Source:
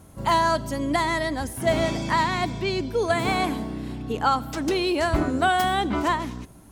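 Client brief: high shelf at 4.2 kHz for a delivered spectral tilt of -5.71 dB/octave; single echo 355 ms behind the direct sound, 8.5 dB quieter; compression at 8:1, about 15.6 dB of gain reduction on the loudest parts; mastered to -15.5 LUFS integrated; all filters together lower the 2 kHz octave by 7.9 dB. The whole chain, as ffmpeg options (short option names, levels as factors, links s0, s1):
-af "equalizer=f=2000:t=o:g=-8.5,highshelf=f=4200:g=-9,acompressor=threshold=0.0178:ratio=8,aecho=1:1:355:0.376,volume=12.6"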